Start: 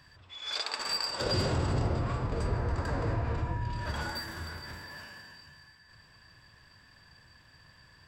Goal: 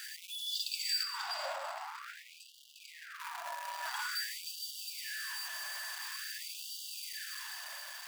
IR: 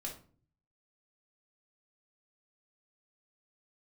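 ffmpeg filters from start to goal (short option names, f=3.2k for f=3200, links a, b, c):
-filter_complex "[0:a]aeval=exprs='val(0)+0.5*0.0224*sgn(val(0))':c=same,asettb=1/sr,asplit=3[a][b][c];[a]atrim=end=1.034[d];[b]atrim=start=1.03:end=3.2,asetpts=PTS-STARTPTS,afade=t=in:d=0.004:c=qsin,afade=t=out:st=2.166:d=0.004:c=qsin,highshelf=f=3.9k:g=-10[e];[c]atrim=start=3.196[f];[d][e]acrossfade=d=0.004:c1=hsin:c2=qsin[g];[g][f]acrossfade=d=0.004:c1=qsin:c2=hsin,dynaudnorm=f=170:g=9:m=3dB,highshelf=f=8.3k:g=4,afftfilt=real='re*gte(b*sr/1024,530*pow(2800/530,0.5+0.5*sin(2*PI*0.48*pts/sr)))':imag='im*gte(b*sr/1024,530*pow(2800/530,0.5+0.5*sin(2*PI*0.48*pts/sr)))':win_size=1024:overlap=0.75,volume=-6.5dB"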